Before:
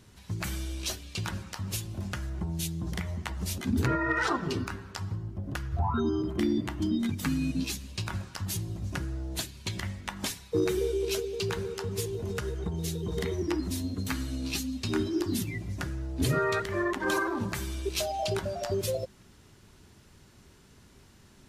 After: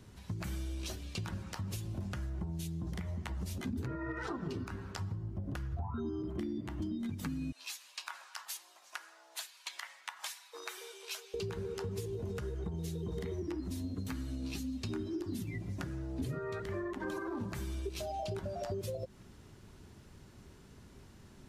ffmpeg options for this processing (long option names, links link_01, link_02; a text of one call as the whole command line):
ffmpeg -i in.wav -filter_complex "[0:a]asettb=1/sr,asplit=3[link_01][link_02][link_03];[link_01]atrim=end=7.524[link_04];[link_02]atrim=start=7.52:end=11.34,asetpts=PTS-STARTPTS,afade=type=in:duration=0.004:curve=qsin,afade=type=out:start_time=3.816:duration=0.004:curve=qsin,highpass=frequency=870:width=0.5412,highpass=frequency=870:width=1.3066[link_05];[link_03]atrim=start=11.336[link_06];[link_04][link_05]acrossfade=duration=0.004:curve1=hsin:curve2=qsin[link_07];[link_07][link_06]acrossfade=duration=0.004:curve1=qsin:curve2=hsin,asettb=1/sr,asplit=3[link_08][link_09][link_10];[link_08]atrim=end=15.634[link_11];[link_09]atrim=start=15.63:end=16.2,asetpts=PTS-STARTPTS,afade=type=in:duration=0.004:curve=qsin,afade=type=out:start_time=0.566:duration=0.004:curve=qsin,highpass=91[link_12];[link_10]atrim=start=16.196[link_13];[link_11][link_12]acrossfade=duration=0.004:curve1=hsin:curve2=qsin[link_14];[link_14][link_13]acrossfade=duration=0.004:curve1=qsin:curve2=hsin,acrossover=split=400[link_15][link_16];[link_16]acompressor=threshold=-34dB:ratio=3[link_17];[link_15][link_17]amix=inputs=2:normalize=0,tiltshelf=frequency=1300:gain=3,acompressor=threshold=-34dB:ratio=6,volume=-1.5dB" out.wav